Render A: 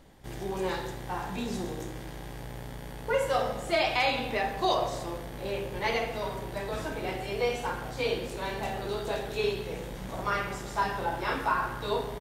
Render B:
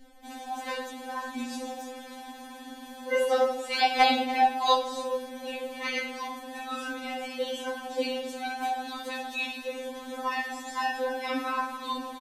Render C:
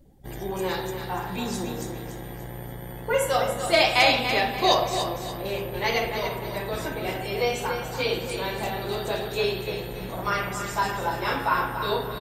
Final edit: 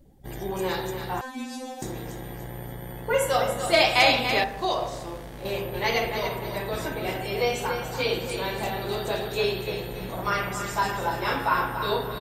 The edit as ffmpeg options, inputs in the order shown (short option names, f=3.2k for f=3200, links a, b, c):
-filter_complex "[2:a]asplit=3[a][b][c];[a]atrim=end=1.212[d];[1:a]atrim=start=1.208:end=1.822[e];[b]atrim=start=1.818:end=4.442[f];[0:a]atrim=start=4.438:end=5.452[g];[c]atrim=start=5.448[h];[d][e]acrossfade=d=0.004:c1=hsin:c2=hsin[i];[i][f]acrossfade=d=0.004:c1=hsin:c2=hsin[j];[j][g]acrossfade=d=0.004:c1=hsin:c2=hsin[k];[k][h]acrossfade=d=0.004:c1=hsin:c2=hsin"